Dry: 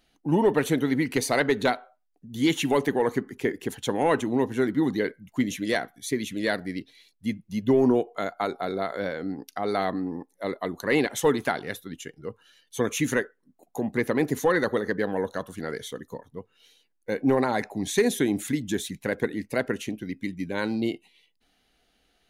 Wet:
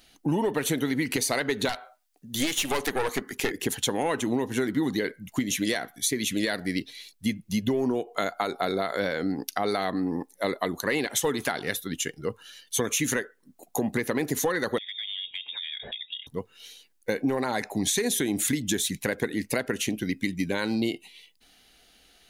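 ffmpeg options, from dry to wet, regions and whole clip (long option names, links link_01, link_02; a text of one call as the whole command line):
ffmpeg -i in.wav -filter_complex "[0:a]asettb=1/sr,asplit=3[link_01][link_02][link_03];[link_01]atrim=end=1.694[link_04];[link_02]atrim=start=1.69:end=3.51,asetpts=PTS-STARTPTS,afade=type=in:duration=0.004:curve=qsin,afade=type=out:start_time=1.816:duration=0.004:curve=qsin,lowshelf=frequency=450:gain=-10,acontrast=67,aeval=exprs='(tanh(10*val(0)+0.75)-tanh(0.75))/10':channel_layout=same[link_05];[link_03]atrim=start=3.506[link_06];[link_04][link_05]acrossfade=duration=0.004:curve1=hsin:curve2=qsin[link_07];[link_07][link_06]acrossfade=duration=0.004:curve1=qsin:curve2=hsin,asettb=1/sr,asplit=3[link_08][link_09][link_10];[link_08]atrim=end=14.784[link_11];[link_09]atrim=start=14.78:end=16.27,asetpts=PTS-STARTPTS,afade=type=in:duration=0.004:curve=qsin,afade=type=out:start_time=1.486:duration=0.004:curve=qsin,lowpass=frequency=3200:width_type=q:width=0.5098,lowpass=frequency=3200:width_type=q:width=0.6013,lowpass=frequency=3200:width_type=q:width=0.9,lowpass=frequency=3200:width_type=q:width=2.563,afreqshift=-3800,acompressor=threshold=-42dB:ratio=10:attack=3.2:release=140:knee=1:detection=peak[link_12];[link_10]atrim=start=16.266[link_13];[link_11][link_12]acrossfade=duration=0.004:curve1=hsin:curve2=qsin[link_14];[link_14][link_13]acrossfade=duration=0.004:curve1=qsin:curve2=hsin,highshelf=frequency=2500:gain=9,alimiter=limit=-15.5dB:level=0:latency=1:release=269,acompressor=threshold=-28dB:ratio=6,volume=5.5dB" out.wav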